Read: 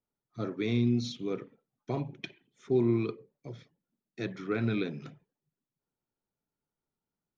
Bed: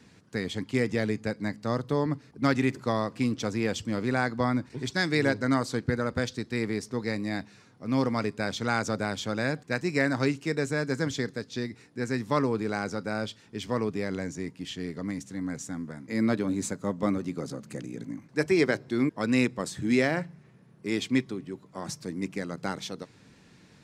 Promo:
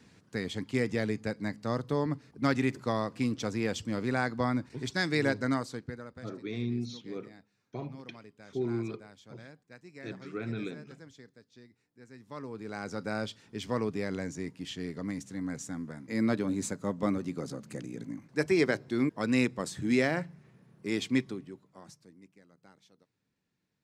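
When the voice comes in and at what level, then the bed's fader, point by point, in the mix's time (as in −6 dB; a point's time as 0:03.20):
5.85 s, −6.0 dB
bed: 0:05.46 −3 dB
0:06.35 −22.5 dB
0:12.11 −22.5 dB
0:13.03 −2.5 dB
0:21.30 −2.5 dB
0:22.34 −26.5 dB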